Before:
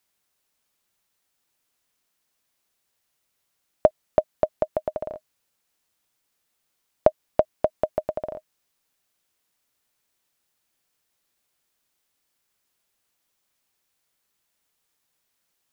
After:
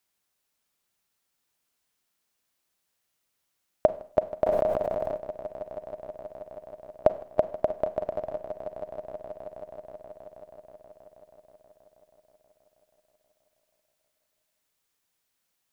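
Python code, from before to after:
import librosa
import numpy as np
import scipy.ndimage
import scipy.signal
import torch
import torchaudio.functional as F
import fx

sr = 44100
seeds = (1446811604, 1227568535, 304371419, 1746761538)

y = fx.echo_swell(x, sr, ms=160, loudest=5, wet_db=-16.5)
y = fx.rev_schroeder(y, sr, rt60_s=0.49, comb_ms=33, drr_db=13.5)
y = fx.sustainer(y, sr, db_per_s=23.0, at=(4.45, 5.16), fade=0.02)
y = y * librosa.db_to_amplitude(-3.5)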